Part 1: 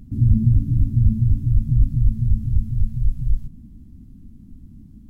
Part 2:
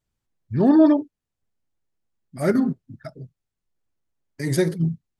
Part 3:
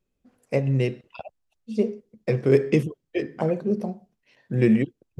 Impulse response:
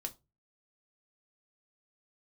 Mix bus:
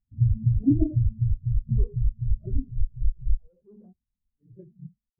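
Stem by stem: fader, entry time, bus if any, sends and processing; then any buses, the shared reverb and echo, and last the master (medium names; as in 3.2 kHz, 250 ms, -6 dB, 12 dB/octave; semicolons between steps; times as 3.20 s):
-4.5 dB, 0.00 s, no send, compression 6:1, threshold -14 dBFS, peak gain reduction 6 dB
-10.5 dB, 0.00 s, no send, phase randomisation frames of 50 ms
-11.5 dB, 0.00 s, no send, bass shelf 260 Hz -10.5 dB; fuzz box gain 40 dB, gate -47 dBFS; auto duck -18 dB, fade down 0.55 s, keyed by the second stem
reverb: none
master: treble shelf 2.7 kHz -7.5 dB; spectral contrast expander 2.5:1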